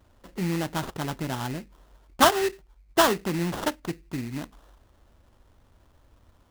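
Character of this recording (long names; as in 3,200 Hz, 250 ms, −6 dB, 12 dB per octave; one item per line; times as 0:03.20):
aliases and images of a low sample rate 2,300 Hz, jitter 20%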